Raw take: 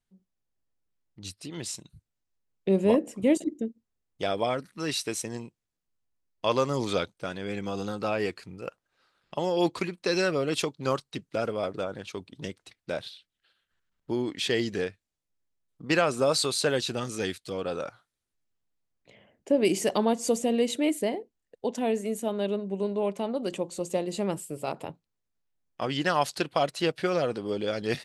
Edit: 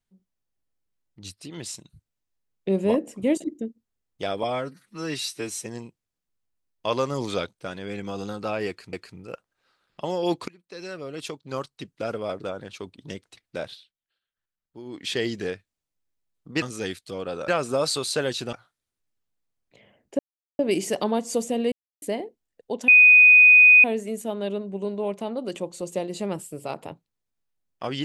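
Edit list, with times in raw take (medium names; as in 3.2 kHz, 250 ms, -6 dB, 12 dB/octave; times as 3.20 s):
4.43–5.25 s: stretch 1.5×
8.27–8.52 s: loop, 2 plays
9.82–11.56 s: fade in, from -24 dB
13.04–14.41 s: dip -12.5 dB, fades 0.22 s
17.01–17.87 s: move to 15.96 s
19.53 s: insert silence 0.40 s
20.66–20.96 s: mute
21.82 s: add tone 2.49 kHz -9 dBFS 0.96 s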